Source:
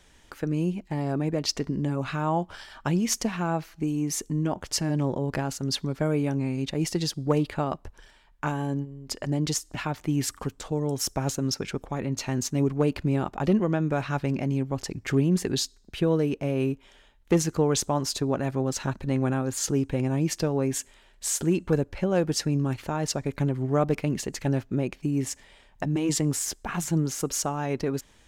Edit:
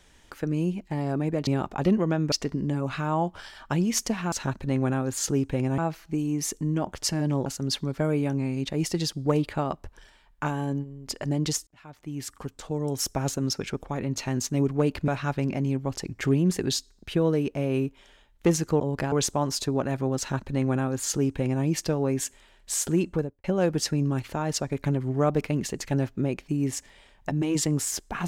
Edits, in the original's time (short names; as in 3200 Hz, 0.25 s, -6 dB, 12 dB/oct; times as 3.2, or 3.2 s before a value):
5.15–5.47 move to 17.66
9.68–11.01 fade in
13.09–13.94 move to 1.47
18.72–20.18 copy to 3.47
21.58–21.98 studio fade out